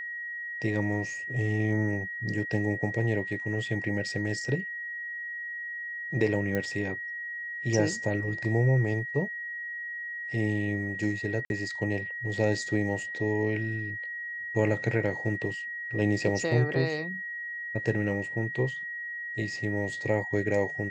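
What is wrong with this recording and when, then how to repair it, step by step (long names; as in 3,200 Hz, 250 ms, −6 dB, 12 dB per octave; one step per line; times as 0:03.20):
whistle 1,900 Hz −34 dBFS
0:06.55: click −17 dBFS
0:11.45–0:11.50: drop-out 51 ms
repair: click removal
notch filter 1,900 Hz, Q 30
repair the gap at 0:11.45, 51 ms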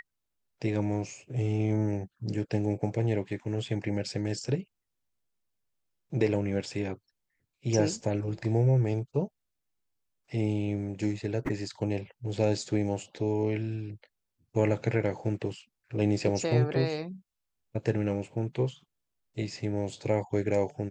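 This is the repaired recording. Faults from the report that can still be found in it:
0:06.55: click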